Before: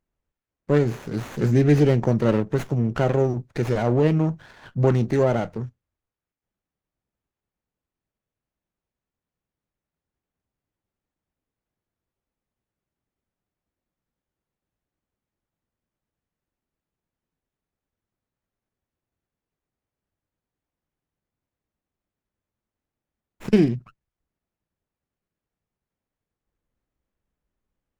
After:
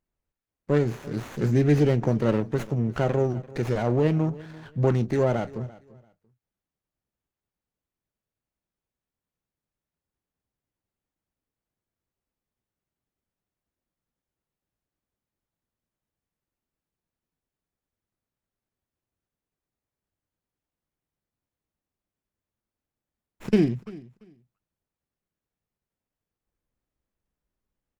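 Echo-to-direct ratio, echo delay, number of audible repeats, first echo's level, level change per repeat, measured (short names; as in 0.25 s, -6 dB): -20.0 dB, 0.341 s, 2, -20.0 dB, -14.0 dB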